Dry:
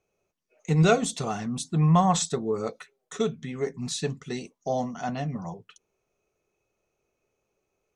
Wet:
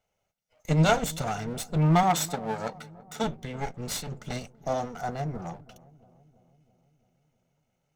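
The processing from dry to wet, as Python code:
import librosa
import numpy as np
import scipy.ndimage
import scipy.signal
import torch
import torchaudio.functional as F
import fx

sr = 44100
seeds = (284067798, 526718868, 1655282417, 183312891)

p1 = fx.lower_of_two(x, sr, delay_ms=1.4)
p2 = fx.highpass(p1, sr, hz=180.0, slope=12, at=(2.03, 3.24))
p3 = fx.over_compress(p2, sr, threshold_db=-33.0, ratio=-1.0, at=(3.89, 4.38))
p4 = fx.peak_eq(p3, sr, hz=2900.0, db=-9.5, octaves=0.89, at=(4.98, 5.4))
y = p4 + fx.echo_filtered(p4, sr, ms=332, feedback_pct=65, hz=1000.0, wet_db=-20.0, dry=0)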